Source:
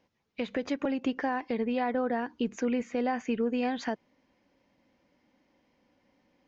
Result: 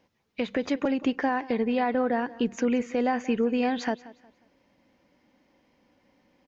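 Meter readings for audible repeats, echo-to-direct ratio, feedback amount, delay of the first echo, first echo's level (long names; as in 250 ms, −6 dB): 2, −18.5 dB, 30%, 180 ms, −19.0 dB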